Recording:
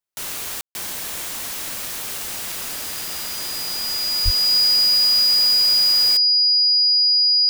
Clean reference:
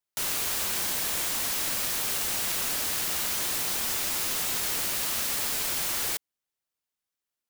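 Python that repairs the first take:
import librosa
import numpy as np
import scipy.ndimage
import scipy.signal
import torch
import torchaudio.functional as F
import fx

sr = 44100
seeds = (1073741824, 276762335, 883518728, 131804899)

y = fx.notch(x, sr, hz=4900.0, q=30.0)
y = fx.highpass(y, sr, hz=140.0, slope=24, at=(4.24, 4.36), fade=0.02)
y = fx.fix_ambience(y, sr, seeds[0], print_start_s=1.54, print_end_s=2.04, start_s=0.61, end_s=0.75)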